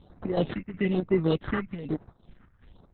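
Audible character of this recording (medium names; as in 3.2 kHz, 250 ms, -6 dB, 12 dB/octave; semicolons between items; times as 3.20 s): aliases and images of a low sample rate 2.4 kHz, jitter 0%; phasing stages 4, 1.1 Hz, lowest notch 600–3300 Hz; chopped level 2.7 Hz, depth 60%, duty 70%; Opus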